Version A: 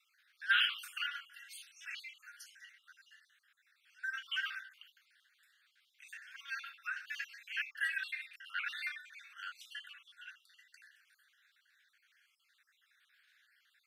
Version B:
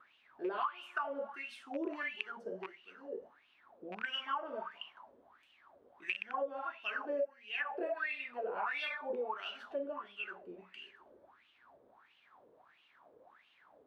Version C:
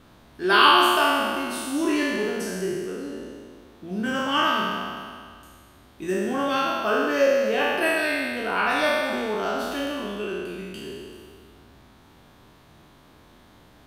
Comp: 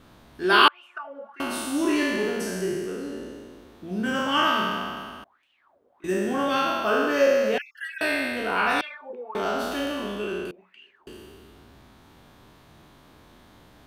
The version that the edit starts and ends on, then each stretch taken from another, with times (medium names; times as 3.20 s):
C
0.68–1.40 s: from B
5.24–6.04 s: from B
7.58–8.01 s: from A
8.81–9.35 s: from B
10.51–11.07 s: from B